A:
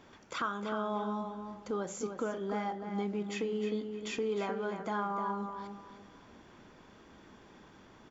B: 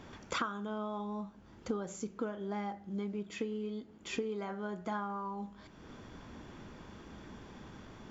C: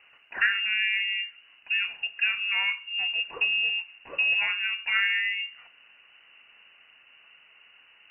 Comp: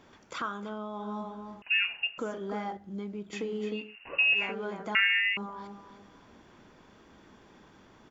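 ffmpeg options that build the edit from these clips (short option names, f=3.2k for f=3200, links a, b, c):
-filter_complex "[1:a]asplit=2[a][b];[2:a]asplit=3[c][d][e];[0:a]asplit=6[f][g][h][i][j][k];[f]atrim=end=0.77[l];[a]atrim=start=0.53:end=1.17[m];[g]atrim=start=0.93:end=1.622[n];[c]atrim=start=1.618:end=2.182[o];[h]atrim=start=2.178:end=2.772[p];[b]atrim=start=2.768:end=3.332[q];[i]atrim=start=3.328:end=3.96[r];[d]atrim=start=3.72:end=4.55[s];[j]atrim=start=4.31:end=4.952[t];[e]atrim=start=4.948:end=5.372[u];[k]atrim=start=5.368[v];[l][m]acrossfade=d=0.24:c1=tri:c2=tri[w];[w][n]acrossfade=d=0.24:c1=tri:c2=tri[x];[x][o]acrossfade=d=0.004:c1=hsin:c2=hsin[y];[y][p]acrossfade=d=0.004:c1=hsin:c2=hsin[z];[z][q]acrossfade=d=0.004:c1=hsin:c2=hsin[aa];[aa][r]acrossfade=d=0.004:c1=hsin:c2=hsin[ab];[ab][s]acrossfade=d=0.24:c1=tri:c2=tri[ac];[ac][t]acrossfade=d=0.24:c1=tri:c2=tri[ad];[ad][u]acrossfade=d=0.004:c1=hsin:c2=hsin[ae];[ae][v]acrossfade=d=0.004:c1=hsin:c2=hsin"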